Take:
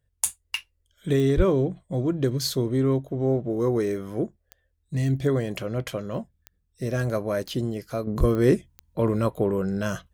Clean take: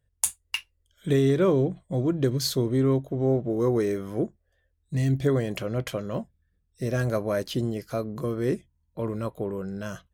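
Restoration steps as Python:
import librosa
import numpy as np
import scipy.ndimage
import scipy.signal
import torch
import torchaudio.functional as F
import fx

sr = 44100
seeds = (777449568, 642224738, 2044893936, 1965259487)

y = fx.fix_declick_ar(x, sr, threshold=10.0)
y = fx.highpass(y, sr, hz=140.0, slope=24, at=(1.36, 1.48), fade=0.02)
y = fx.highpass(y, sr, hz=140.0, slope=24, at=(8.19, 8.31), fade=0.02)
y = fx.fix_level(y, sr, at_s=8.07, step_db=-7.0)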